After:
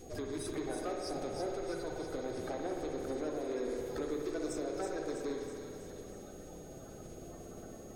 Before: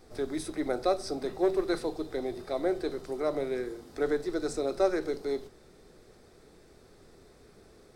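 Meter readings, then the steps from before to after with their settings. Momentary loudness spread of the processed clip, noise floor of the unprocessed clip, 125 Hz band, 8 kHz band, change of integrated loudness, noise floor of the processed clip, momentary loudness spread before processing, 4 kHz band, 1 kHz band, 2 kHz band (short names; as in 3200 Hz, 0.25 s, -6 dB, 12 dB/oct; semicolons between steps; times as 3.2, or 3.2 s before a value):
12 LU, -57 dBFS, -0.5 dB, -0.5 dB, -8.5 dB, -50 dBFS, 7 LU, -6.0 dB, -6.5 dB, -6.5 dB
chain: bin magnitudes rounded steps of 30 dB; compressor 6:1, threshold -40 dBFS, peak gain reduction 18.5 dB; soft clip -37.5 dBFS, distortion -14 dB; whine 6600 Hz -66 dBFS; thin delay 0.325 s, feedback 60%, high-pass 4400 Hz, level -4 dB; spring tank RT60 2.9 s, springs 56 ms, chirp 50 ms, DRR 0.5 dB; gain +5 dB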